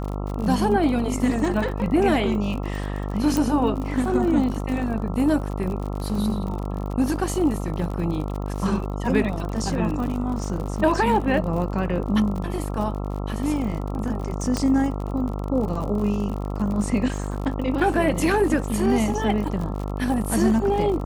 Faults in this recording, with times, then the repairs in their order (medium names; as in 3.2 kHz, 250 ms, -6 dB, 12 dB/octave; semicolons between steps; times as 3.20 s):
buzz 50 Hz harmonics 27 -28 dBFS
crackle 57 per s -30 dBFS
3.37 s: pop
14.57 s: pop -11 dBFS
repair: de-click; de-hum 50 Hz, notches 27